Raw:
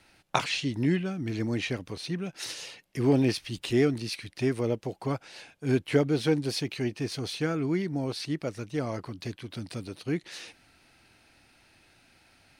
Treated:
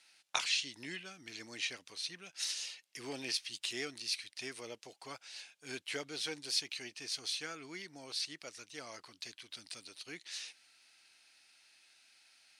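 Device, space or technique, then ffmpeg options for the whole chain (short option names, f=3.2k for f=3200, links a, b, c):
piezo pickup straight into a mixer: -af "lowpass=6.8k,aderivative,volume=5dB"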